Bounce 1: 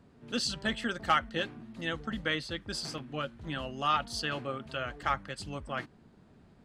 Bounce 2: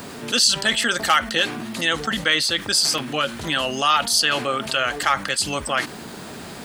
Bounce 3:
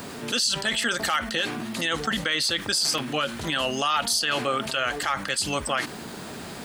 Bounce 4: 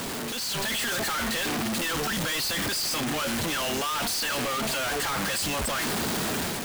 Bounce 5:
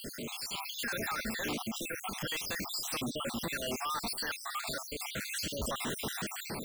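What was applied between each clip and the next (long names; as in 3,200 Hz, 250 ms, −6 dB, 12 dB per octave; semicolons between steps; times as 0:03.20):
RIAA equalisation recording; envelope flattener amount 50%; level +7 dB
brickwall limiter −12.5 dBFS, peak gain reduction 8.5 dB; level −1.5 dB
sign of each sample alone; automatic gain control gain up to 5 dB; level −6 dB
time-frequency cells dropped at random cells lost 61%; level −5 dB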